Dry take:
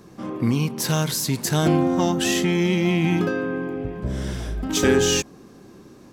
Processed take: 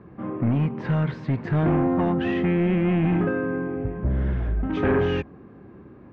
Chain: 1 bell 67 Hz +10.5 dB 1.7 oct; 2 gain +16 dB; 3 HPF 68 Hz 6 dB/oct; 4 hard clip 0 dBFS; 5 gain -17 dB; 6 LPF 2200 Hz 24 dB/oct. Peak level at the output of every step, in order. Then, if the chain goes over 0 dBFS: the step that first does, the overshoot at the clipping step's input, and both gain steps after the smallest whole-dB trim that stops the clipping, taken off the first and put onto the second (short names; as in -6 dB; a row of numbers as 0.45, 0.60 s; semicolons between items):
-5.5, +10.5, +9.5, 0.0, -17.0, -15.5 dBFS; step 2, 9.5 dB; step 2 +6 dB, step 5 -7 dB